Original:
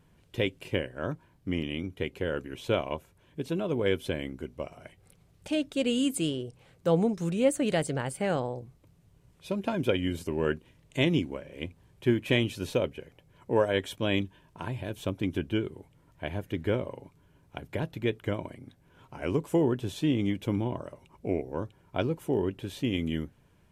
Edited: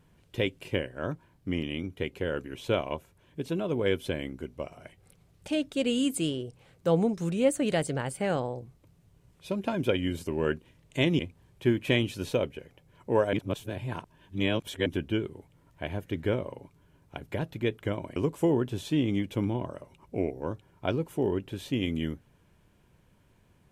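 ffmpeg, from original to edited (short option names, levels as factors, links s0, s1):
-filter_complex "[0:a]asplit=5[s0][s1][s2][s3][s4];[s0]atrim=end=11.192[s5];[s1]atrim=start=11.598:end=13.742[s6];[s2]atrim=start=13.738:end=15.272,asetpts=PTS-STARTPTS,areverse[s7];[s3]atrim=start=15.268:end=18.572[s8];[s4]atrim=start=19.268[s9];[s5][s6]acrossfade=d=0.004:c1=hsin:c2=hsin[s10];[s10][s7]acrossfade=d=0.004:c1=hsin:c2=hsin[s11];[s11][s8]acrossfade=d=0.004:c1=hsin:c2=hsin[s12];[s12][s9]acrossfade=d=0.004:c1=hsin:c2=hsin"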